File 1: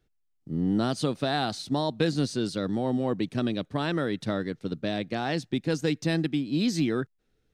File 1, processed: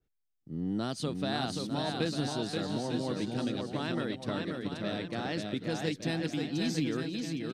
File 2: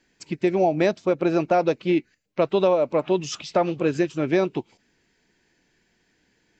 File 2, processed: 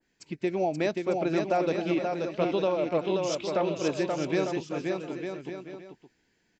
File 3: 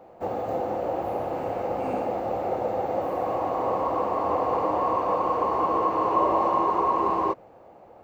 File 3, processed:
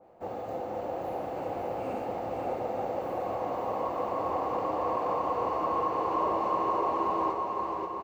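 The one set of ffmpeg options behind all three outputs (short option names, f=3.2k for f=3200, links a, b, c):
-filter_complex "[0:a]asplit=2[a][b];[b]aecho=0:1:530|901|1161|1342|1470:0.631|0.398|0.251|0.158|0.1[c];[a][c]amix=inputs=2:normalize=0,adynamicequalizer=threshold=0.0158:dfrequency=1900:dqfactor=0.7:tfrequency=1900:tqfactor=0.7:attack=5:release=100:ratio=0.375:range=1.5:mode=boostabove:tftype=highshelf,volume=-7.5dB"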